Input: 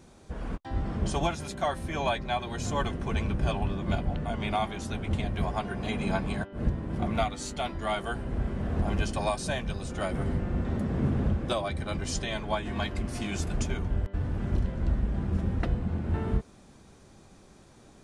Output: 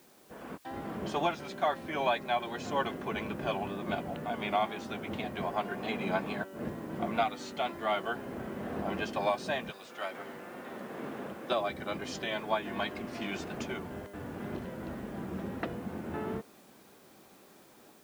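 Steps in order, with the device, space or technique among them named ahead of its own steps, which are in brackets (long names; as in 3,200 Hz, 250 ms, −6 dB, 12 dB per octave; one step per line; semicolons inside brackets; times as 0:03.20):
0:09.70–0:11.49: high-pass filter 1,300 Hz → 480 Hz 6 dB per octave
dictaphone (band-pass filter 260–3,700 Hz; automatic gain control gain up to 4.5 dB; tape wow and flutter; white noise bed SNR 28 dB)
level −4.5 dB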